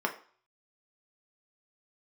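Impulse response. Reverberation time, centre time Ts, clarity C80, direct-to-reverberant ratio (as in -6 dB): 0.45 s, 11 ms, 17.0 dB, 2.0 dB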